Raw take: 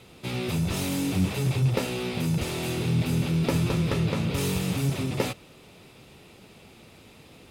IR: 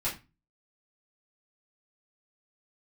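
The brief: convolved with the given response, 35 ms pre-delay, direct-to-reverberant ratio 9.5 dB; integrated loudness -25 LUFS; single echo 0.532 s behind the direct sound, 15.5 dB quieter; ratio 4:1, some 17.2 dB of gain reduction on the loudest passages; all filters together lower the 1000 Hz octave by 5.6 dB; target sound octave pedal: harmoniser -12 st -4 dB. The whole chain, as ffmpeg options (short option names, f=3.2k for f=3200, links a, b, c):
-filter_complex "[0:a]equalizer=f=1k:t=o:g=-7.5,acompressor=threshold=-42dB:ratio=4,aecho=1:1:532:0.168,asplit=2[a][b];[1:a]atrim=start_sample=2205,adelay=35[c];[b][c]afir=irnorm=-1:irlink=0,volume=-16dB[d];[a][d]amix=inputs=2:normalize=0,asplit=2[e][f];[f]asetrate=22050,aresample=44100,atempo=2,volume=-4dB[g];[e][g]amix=inputs=2:normalize=0,volume=16.5dB"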